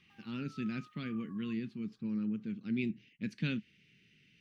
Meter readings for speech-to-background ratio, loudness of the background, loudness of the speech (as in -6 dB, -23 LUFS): 19.5 dB, -58.0 LUFS, -38.5 LUFS